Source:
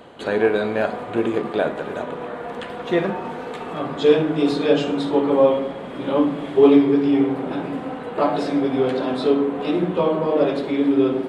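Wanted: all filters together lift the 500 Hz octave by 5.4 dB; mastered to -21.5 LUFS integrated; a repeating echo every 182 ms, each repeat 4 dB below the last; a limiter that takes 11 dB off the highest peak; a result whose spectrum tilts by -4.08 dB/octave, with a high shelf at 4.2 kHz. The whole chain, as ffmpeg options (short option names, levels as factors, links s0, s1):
-af "equalizer=f=500:t=o:g=6.5,highshelf=f=4200:g=-4.5,alimiter=limit=0.355:level=0:latency=1,aecho=1:1:182|364|546|728|910|1092|1274|1456|1638:0.631|0.398|0.25|0.158|0.0994|0.0626|0.0394|0.0249|0.0157,volume=0.631"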